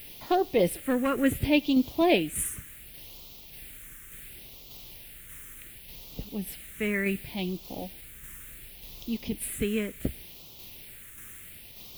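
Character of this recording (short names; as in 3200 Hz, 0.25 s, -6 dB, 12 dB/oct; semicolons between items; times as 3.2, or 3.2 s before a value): a quantiser's noise floor 8-bit, dither triangular; phasing stages 4, 0.69 Hz, lowest notch 780–1600 Hz; tremolo saw down 1.7 Hz, depth 35%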